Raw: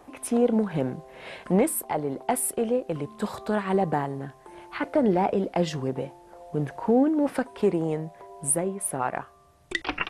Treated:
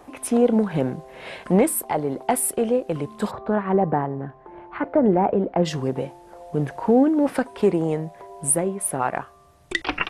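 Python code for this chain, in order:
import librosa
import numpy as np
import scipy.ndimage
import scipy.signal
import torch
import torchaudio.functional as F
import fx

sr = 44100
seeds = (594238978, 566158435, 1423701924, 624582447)

y = fx.lowpass(x, sr, hz=1500.0, slope=12, at=(3.3, 5.64), fade=0.02)
y = y * 10.0 ** (4.0 / 20.0)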